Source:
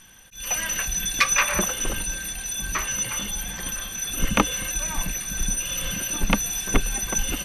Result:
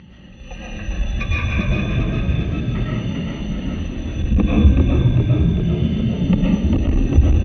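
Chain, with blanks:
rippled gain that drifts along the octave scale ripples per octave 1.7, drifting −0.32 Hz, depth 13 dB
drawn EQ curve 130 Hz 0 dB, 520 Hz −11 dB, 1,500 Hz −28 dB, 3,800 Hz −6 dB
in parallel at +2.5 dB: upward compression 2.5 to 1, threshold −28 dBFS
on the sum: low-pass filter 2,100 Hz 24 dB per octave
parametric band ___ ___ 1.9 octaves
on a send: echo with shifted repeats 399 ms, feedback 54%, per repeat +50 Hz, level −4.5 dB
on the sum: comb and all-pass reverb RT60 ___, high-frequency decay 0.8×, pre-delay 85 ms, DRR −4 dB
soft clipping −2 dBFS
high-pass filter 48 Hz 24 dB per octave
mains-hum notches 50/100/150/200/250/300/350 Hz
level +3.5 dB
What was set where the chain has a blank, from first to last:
670 Hz, −3.5 dB, 0.71 s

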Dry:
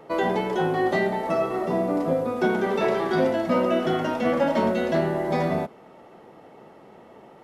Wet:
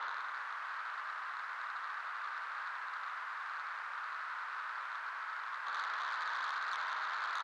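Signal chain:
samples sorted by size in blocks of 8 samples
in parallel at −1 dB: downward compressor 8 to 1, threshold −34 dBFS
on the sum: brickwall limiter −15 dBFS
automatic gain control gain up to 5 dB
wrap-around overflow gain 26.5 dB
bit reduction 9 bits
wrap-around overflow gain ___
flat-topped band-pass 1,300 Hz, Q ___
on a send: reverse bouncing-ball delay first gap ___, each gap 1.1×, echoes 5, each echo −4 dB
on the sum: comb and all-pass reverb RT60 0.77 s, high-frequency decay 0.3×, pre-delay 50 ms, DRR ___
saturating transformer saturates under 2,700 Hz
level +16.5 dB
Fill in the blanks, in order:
41 dB, 2.1, 100 ms, 15.5 dB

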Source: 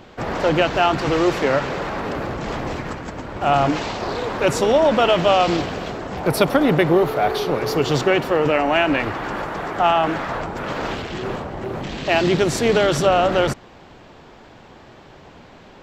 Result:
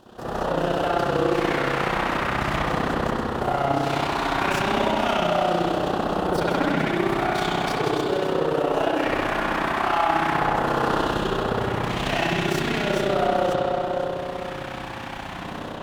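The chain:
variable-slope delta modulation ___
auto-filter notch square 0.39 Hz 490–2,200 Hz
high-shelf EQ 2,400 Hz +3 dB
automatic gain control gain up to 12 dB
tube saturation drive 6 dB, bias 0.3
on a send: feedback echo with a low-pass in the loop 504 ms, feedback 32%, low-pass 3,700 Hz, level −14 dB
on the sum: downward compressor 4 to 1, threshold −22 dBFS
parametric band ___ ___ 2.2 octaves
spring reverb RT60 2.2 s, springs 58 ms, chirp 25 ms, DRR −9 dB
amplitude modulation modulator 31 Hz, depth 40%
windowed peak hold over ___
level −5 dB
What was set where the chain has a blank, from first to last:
64 kbit/s, 78 Hz, −5.5 dB, 3 samples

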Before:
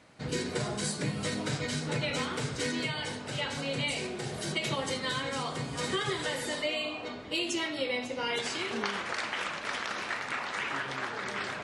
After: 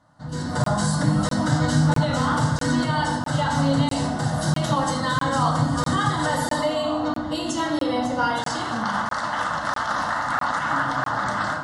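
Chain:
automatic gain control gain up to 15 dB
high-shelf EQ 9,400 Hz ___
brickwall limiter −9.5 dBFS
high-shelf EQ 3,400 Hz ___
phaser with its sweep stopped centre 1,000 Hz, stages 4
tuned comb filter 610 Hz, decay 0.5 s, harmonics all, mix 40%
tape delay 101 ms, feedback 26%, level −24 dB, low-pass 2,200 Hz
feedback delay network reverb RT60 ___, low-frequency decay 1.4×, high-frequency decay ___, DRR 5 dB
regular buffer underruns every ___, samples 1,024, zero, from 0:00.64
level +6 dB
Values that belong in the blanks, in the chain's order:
+3 dB, −12 dB, 1 s, 0.8×, 0.65 s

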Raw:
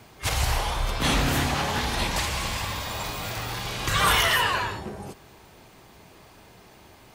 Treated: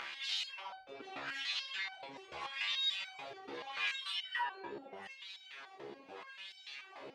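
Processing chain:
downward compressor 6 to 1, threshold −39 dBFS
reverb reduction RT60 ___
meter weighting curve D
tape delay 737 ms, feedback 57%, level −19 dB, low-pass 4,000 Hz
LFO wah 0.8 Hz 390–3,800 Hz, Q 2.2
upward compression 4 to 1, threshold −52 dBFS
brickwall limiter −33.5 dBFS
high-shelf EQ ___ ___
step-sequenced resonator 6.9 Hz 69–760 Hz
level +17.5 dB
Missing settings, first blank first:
1.6 s, 11,000 Hz, −9.5 dB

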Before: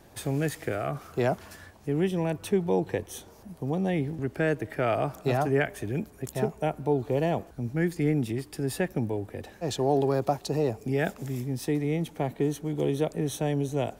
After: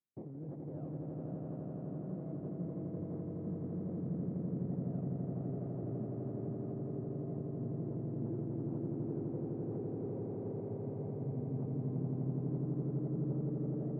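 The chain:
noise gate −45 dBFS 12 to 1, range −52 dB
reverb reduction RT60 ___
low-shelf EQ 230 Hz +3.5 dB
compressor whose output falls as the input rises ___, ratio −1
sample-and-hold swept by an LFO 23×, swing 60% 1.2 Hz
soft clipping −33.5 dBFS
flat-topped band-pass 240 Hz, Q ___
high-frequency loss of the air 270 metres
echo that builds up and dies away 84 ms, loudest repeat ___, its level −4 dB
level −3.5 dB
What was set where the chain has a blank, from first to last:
1.5 s, −36 dBFS, 0.79, 8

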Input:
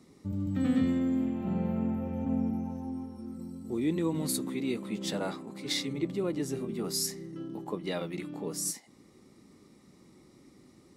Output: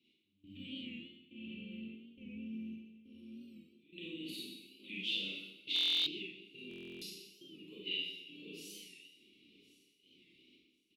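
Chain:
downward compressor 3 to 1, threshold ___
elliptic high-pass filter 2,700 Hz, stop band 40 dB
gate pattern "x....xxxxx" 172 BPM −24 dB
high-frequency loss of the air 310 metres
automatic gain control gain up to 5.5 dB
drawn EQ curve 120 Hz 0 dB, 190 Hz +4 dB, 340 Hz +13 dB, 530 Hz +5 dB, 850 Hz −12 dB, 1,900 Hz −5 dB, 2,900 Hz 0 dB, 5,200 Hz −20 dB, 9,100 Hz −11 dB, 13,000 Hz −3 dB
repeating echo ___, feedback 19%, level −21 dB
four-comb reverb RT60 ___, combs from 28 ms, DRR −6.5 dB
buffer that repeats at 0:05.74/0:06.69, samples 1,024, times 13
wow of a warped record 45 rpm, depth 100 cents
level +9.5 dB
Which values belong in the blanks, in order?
−33 dBFS, 1,061 ms, 0.98 s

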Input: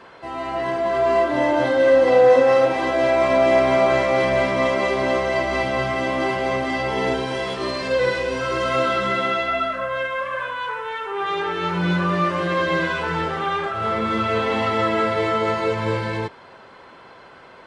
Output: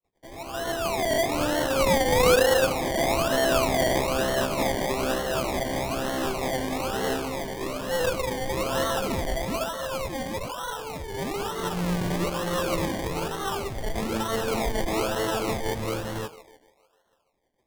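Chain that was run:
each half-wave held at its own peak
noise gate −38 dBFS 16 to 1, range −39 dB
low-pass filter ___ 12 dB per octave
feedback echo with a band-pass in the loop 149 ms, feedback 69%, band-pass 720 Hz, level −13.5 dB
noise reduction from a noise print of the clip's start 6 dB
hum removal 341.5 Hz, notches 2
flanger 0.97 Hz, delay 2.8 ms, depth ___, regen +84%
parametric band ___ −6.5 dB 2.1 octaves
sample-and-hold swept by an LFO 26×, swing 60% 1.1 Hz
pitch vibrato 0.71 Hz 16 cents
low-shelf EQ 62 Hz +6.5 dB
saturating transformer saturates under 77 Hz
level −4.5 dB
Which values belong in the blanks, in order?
3,400 Hz, 9.6 ms, 94 Hz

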